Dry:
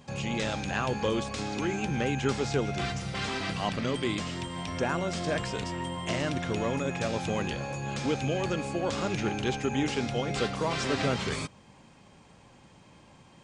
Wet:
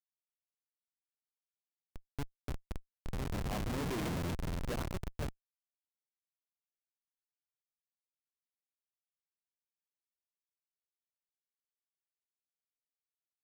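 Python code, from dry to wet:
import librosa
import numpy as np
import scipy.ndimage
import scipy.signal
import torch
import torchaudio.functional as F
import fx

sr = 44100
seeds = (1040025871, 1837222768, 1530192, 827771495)

y = fx.doppler_pass(x, sr, speed_mps=11, closest_m=4.2, pass_at_s=4.06)
y = fx.schmitt(y, sr, flips_db=-32.5)
y = y * librosa.db_to_amplitude(6.5)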